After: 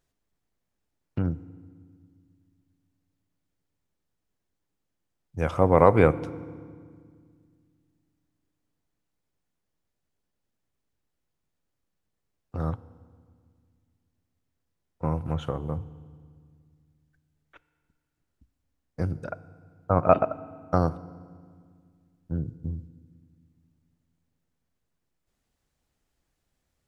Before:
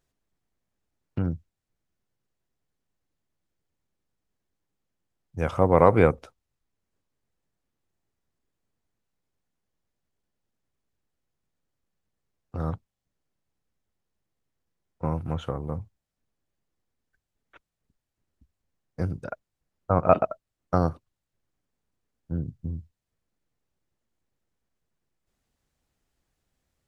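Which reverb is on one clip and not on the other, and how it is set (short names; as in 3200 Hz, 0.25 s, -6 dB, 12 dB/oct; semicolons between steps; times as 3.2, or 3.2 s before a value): FDN reverb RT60 1.9 s, low-frequency decay 1.5×, high-frequency decay 0.85×, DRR 16 dB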